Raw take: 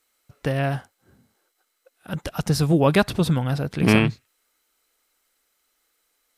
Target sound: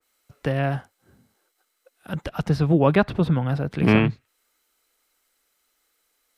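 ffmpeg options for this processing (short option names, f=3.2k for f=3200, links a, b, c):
-filter_complex "[0:a]acrossover=split=190|3800[a][b][c];[c]acompressor=threshold=-54dB:ratio=4[d];[a][b][d]amix=inputs=3:normalize=0,adynamicequalizer=threshold=0.0126:dfrequency=2200:dqfactor=0.7:tfrequency=2200:tqfactor=0.7:attack=5:release=100:ratio=0.375:range=3:mode=cutabove:tftype=highshelf"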